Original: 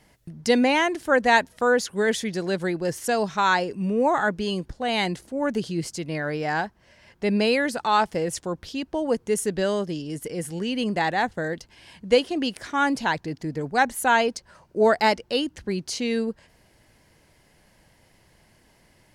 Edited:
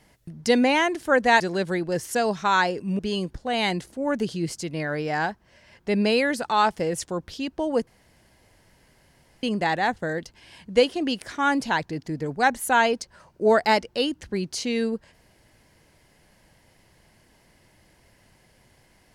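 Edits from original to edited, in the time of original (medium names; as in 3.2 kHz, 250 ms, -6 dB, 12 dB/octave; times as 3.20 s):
1.40–2.33 s: delete
3.92–4.34 s: delete
9.22–10.78 s: room tone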